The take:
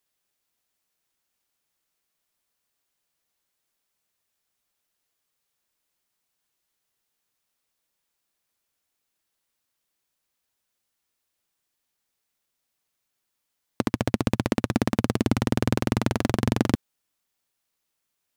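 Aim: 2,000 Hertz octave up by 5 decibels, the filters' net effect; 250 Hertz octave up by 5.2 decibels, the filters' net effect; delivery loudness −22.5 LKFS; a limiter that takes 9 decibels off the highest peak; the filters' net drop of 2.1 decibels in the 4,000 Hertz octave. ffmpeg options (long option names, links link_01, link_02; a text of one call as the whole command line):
ffmpeg -i in.wav -af "equalizer=frequency=250:width_type=o:gain=6,equalizer=frequency=2000:width_type=o:gain=7.5,equalizer=frequency=4000:width_type=o:gain=-6,volume=6.5dB,alimiter=limit=-5dB:level=0:latency=1" out.wav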